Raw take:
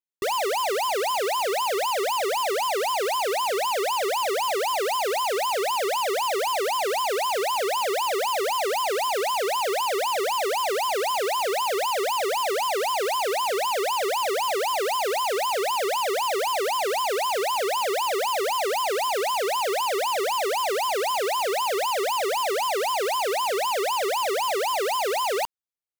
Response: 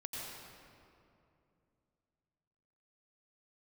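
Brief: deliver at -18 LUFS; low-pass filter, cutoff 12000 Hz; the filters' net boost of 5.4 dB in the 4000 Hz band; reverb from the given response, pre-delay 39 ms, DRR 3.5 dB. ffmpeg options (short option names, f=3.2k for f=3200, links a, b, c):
-filter_complex "[0:a]lowpass=12k,equalizer=f=4k:t=o:g=7.5,asplit=2[a][b];[1:a]atrim=start_sample=2205,adelay=39[c];[b][c]afir=irnorm=-1:irlink=0,volume=-3.5dB[d];[a][d]amix=inputs=2:normalize=0,volume=3.5dB"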